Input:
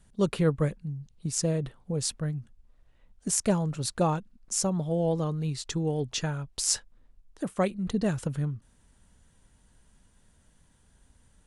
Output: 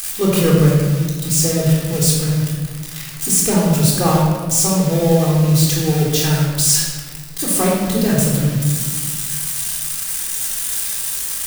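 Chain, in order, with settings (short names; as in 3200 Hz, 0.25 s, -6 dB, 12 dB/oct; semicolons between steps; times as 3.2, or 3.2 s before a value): switching spikes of -20.5 dBFS; reverb RT60 1.5 s, pre-delay 3 ms, DRR -3.5 dB; gain +3.5 dB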